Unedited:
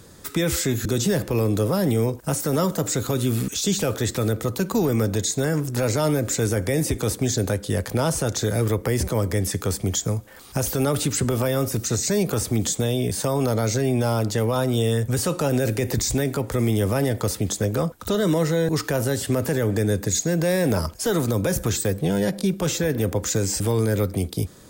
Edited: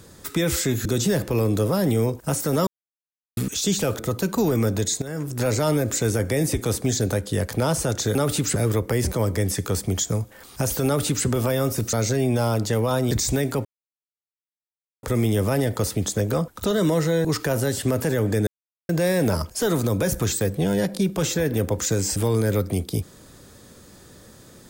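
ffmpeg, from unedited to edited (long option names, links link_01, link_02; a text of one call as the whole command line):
ffmpeg -i in.wav -filter_complex "[0:a]asplit=12[link_01][link_02][link_03][link_04][link_05][link_06][link_07][link_08][link_09][link_10][link_11][link_12];[link_01]atrim=end=2.67,asetpts=PTS-STARTPTS,afade=type=out:start_time=2.666:duration=0.004:curve=hsin[link_13];[link_02]atrim=start=2.67:end=3.37,asetpts=PTS-STARTPTS,volume=0[link_14];[link_03]atrim=start=3.37:end=3.992,asetpts=PTS-STARTPTS,afade=type=in:duration=0.004:curve=hsin[link_15];[link_04]atrim=start=4.358:end=5.39,asetpts=PTS-STARTPTS,afade=type=out:start_time=1.028:duration=0.004:curve=hsin:silence=0.188365[link_16];[link_05]atrim=start=5.39:end=8.522,asetpts=PTS-STARTPTS,afade=type=in:duration=0.42:silence=0.188365[link_17];[link_06]atrim=start=10.818:end=11.232[link_18];[link_07]atrim=start=8.518:end=11.892[link_19];[link_08]atrim=start=13.578:end=14.762[link_20];[link_09]atrim=start=15.928:end=16.47,asetpts=PTS-STARTPTS,afade=type=out:start_time=0.538:duration=0.004:curve=hsin,apad=pad_dur=1.38[link_21];[link_10]atrim=start=16.47:end=19.91,asetpts=PTS-STARTPTS,afade=type=in:duration=0.004:curve=hsin,afade=type=out:start_time=3.436:duration=0.004:curve=hsin[link_22];[link_11]atrim=start=19.91:end=20.33,asetpts=PTS-STARTPTS,volume=0[link_23];[link_12]atrim=start=20.33,asetpts=PTS-STARTPTS,afade=type=in:duration=0.004:curve=hsin[link_24];[link_13][link_14][link_15]concat=n=3:v=0:a=1[link_25];[link_16][link_17]concat=n=2:v=0:a=1[link_26];[link_25][link_26]acrossfade=duration=0.004:curve1=hsin:curve2=hsin[link_27];[link_27][link_18]acrossfade=duration=0.004:curve1=hsin:curve2=hsin[link_28];[link_28][link_19]acrossfade=duration=0.004:curve1=hsin:curve2=hsin[link_29];[link_29][link_20]acrossfade=duration=0.004:curve1=hsin:curve2=hsin[link_30];[link_21][link_22][link_23][link_24]concat=n=4:v=0:a=1[link_31];[link_30][link_31]acrossfade=duration=0.004:curve1=hsin:curve2=hsin" out.wav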